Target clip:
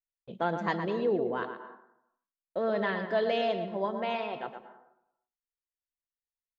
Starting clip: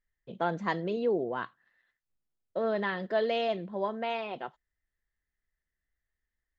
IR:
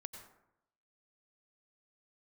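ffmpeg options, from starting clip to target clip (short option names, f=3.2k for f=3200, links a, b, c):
-filter_complex "[0:a]agate=range=-24dB:threshold=-58dB:ratio=16:detection=peak,asplit=2[a][b];[b]highpass=f=160:w=0.5412,highpass=f=160:w=1.3066[c];[1:a]atrim=start_sample=2205,highshelf=f=3.7k:g=-9.5,adelay=118[d];[c][d]afir=irnorm=-1:irlink=0,volume=-2dB[e];[a][e]amix=inputs=2:normalize=0"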